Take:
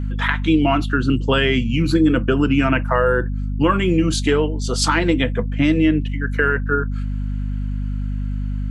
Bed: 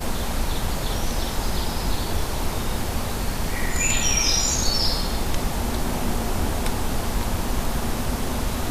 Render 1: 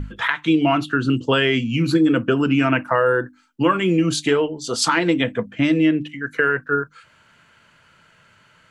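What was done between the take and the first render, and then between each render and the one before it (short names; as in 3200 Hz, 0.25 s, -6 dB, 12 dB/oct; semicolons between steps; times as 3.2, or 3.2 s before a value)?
notches 50/100/150/200/250/300 Hz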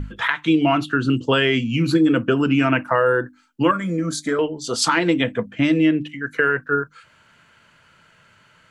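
3.71–4.39 fixed phaser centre 560 Hz, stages 8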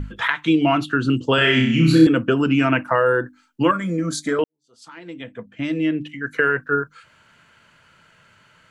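1.35–2.07 flutter echo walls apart 5.3 m, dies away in 0.67 s; 4.44–6.26 fade in quadratic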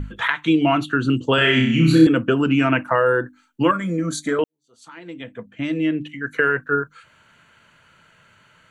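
notch 5100 Hz, Q 5.3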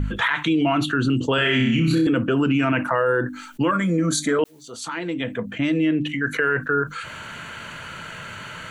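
limiter -13 dBFS, peak gain reduction 11.5 dB; fast leveller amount 50%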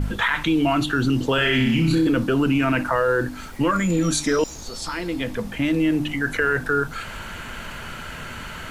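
add bed -15 dB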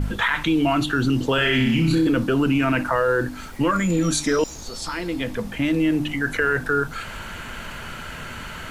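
nothing audible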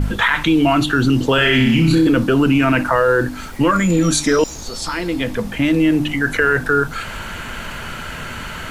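gain +5.5 dB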